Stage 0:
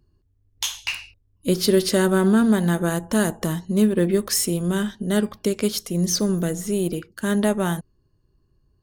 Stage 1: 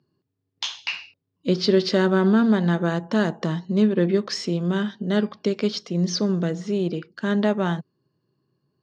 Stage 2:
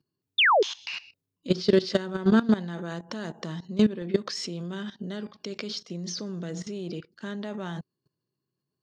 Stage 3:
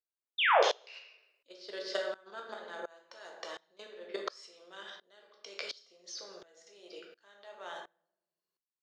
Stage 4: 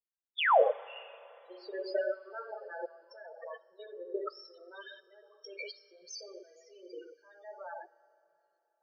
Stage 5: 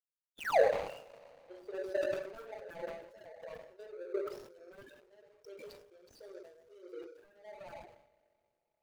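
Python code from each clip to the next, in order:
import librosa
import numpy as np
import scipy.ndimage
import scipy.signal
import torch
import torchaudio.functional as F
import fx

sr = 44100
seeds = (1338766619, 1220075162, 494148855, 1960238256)

y1 = scipy.signal.sosfilt(scipy.signal.ellip(3, 1.0, 40, [140.0, 5000.0], 'bandpass', fs=sr, output='sos'), x)
y2 = fx.high_shelf(y1, sr, hz=3300.0, db=8.5)
y2 = fx.level_steps(y2, sr, step_db=17)
y2 = fx.spec_paint(y2, sr, seeds[0], shape='fall', start_s=0.38, length_s=0.25, low_hz=360.0, high_hz=3800.0, level_db=-19.0)
y3 = scipy.signal.sosfilt(scipy.signal.butter(4, 510.0, 'highpass', fs=sr, output='sos'), y2)
y3 = fx.room_shoebox(y3, sr, seeds[1], volume_m3=150.0, walls='mixed', distance_m=0.76)
y3 = fx.tremolo_decay(y3, sr, direction='swelling', hz=1.4, depth_db=25)
y4 = fx.spec_topn(y3, sr, count=8)
y4 = fx.rev_schroeder(y4, sr, rt60_s=3.6, comb_ms=30, drr_db=20.0)
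y4 = y4 * librosa.db_to_amplitude(4.0)
y5 = scipy.signal.medfilt(y4, 41)
y5 = fx.sustainer(y5, sr, db_per_s=75.0)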